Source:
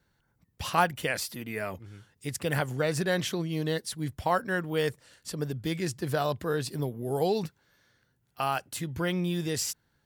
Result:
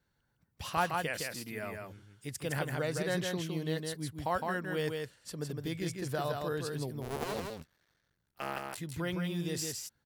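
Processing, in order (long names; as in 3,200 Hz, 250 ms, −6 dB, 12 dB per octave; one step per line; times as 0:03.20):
0:07.01–0:08.78: sub-harmonics by changed cycles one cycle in 2, muted
on a send: single-tap delay 161 ms −4 dB
on the sum: level −6.5 dB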